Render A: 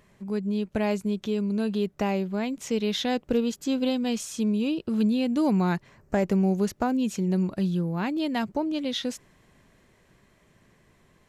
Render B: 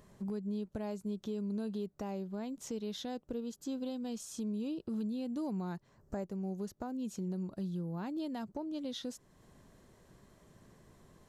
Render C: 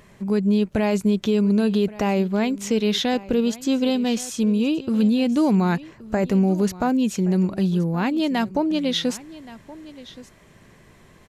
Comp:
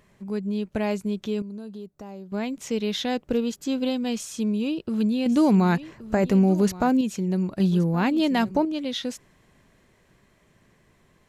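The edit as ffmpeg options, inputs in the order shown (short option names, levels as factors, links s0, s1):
-filter_complex "[2:a]asplit=2[s0][s1];[0:a]asplit=4[s2][s3][s4][s5];[s2]atrim=end=1.422[s6];[1:a]atrim=start=1.418:end=2.322[s7];[s3]atrim=start=2.318:end=5.262[s8];[s0]atrim=start=5.258:end=7.012[s9];[s4]atrim=start=7.008:end=7.602[s10];[s1]atrim=start=7.598:end=8.652[s11];[s5]atrim=start=8.648[s12];[s6][s7]acrossfade=d=0.004:c1=hsin:c2=hsin[s13];[s13][s8]acrossfade=d=0.004:c1=hsin:c2=hsin[s14];[s14][s9]acrossfade=d=0.004:c1=hsin:c2=hsin[s15];[s15][s10]acrossfade=d=0.004:c1=hsin:c2=hsin[s16];[s16][s11]acrossfade=d=0.004:c1=hsin:c2=hsin[s17];[s17][s12]acrossfade=d=0.004:c1=hsin:c2=hsin"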